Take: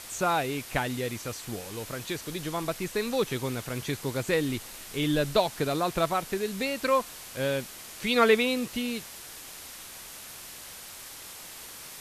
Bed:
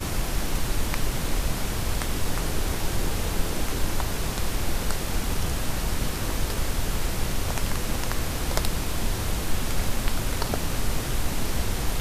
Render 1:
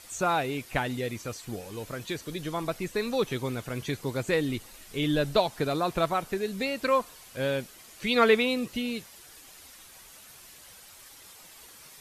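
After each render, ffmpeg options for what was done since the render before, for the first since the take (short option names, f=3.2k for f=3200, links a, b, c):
-af "afftdn=nr=9:nf=-44"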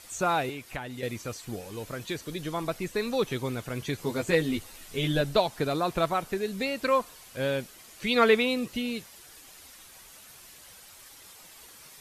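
-filter_complex "[0:a]asettb=1/sr,asplit=3[a][b][c];[a]atrim=end=0.494[d];[b]atrim=start=0.49:end=1.03,asetpts=PTS-STARTPTS,afade=t=in:d=0.004:c=qsin,afade=t=out:st=0.536:d=0.004:c=qsin,acrossover=split=810|1800[e][f][g];[e]acompressor=threshold=-38dB:ratio=4[h];[f]acompressor=threshold=-41dB:ratio=4[i];[g]acompressor=threshold=-44dB:ratio=4[j];[h][i][j]amix=inputs=3:normalize=0[k];[c]atrim=start=1.026[l];[d][k]acrossfade=d=0.004:c1=hsin:c2=qsin[m];[m][l]acrossfade=d=0.004:c1=qsin:c2=hsin,asettb=1/sr,asplit=3[n][o][p];[n]atrim=end=3.974[q];[o]atrim=start=3.97:end=5.21,asetpts=PTS-STARTPTS,afade=t=in:d=0.004:c=qsin,afade=t=out:st=1.236:d=0.004:c=qsin,asplit=2[r][s];[s]adelay=12,volume=-3dB[t];[r][t]amix=inputs=2:normalize=0,atrim=end_sample=54684[u];[p]atrim=start=5.206[v];[q][u]acrossfade=d=0.004:c1=hsin:c2=qsin[w];[w][v]acrossfade=d=0.004:c1=qsin:c2=hsin"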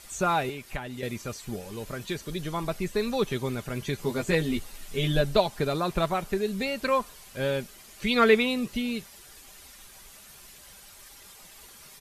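-af "lowshelf=f=88:g=9,aecho=1:1:5:0.33"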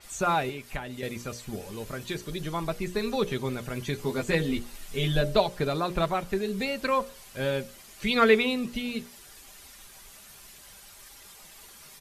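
-af "bandreject=f=60:t=h:w=6,bandreject=f=120:t=h:w=6,bandreject=f=180:t=h:w=6,bandreject=f=240:t=h:w=6,bandreject=f=300:t=h:w=6,bandreject=f=360:t=h:w=6,bandreject=f=420:t=h:w=6,bandreject=f=480:t=h:w=6,bandreject=f=540:t=h:w=6,bandreject=f=600:t=h:w=6,adynamicequalizer=threshold=0.00562:dfrequency=5600:dqfactor=0.7:tfrequency=5600:tqfactor=0.7:attack=5:release=100:ratio=0.375:range=2:mode=cutabove:tftype=highshelf"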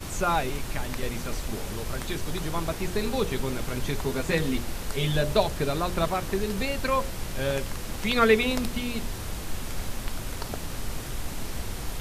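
-filter_complex "[1:a]volume=-7dB[a];[0:a][a]amix=inputs=2:normalize=0"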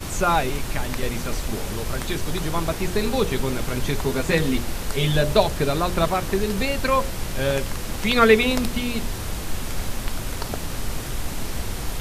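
-af "volume=5dB"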